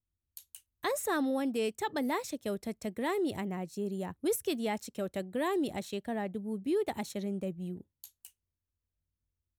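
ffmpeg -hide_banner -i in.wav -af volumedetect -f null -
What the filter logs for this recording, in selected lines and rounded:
mean_volume: -35.2 dB
max_volume: -21.9 dB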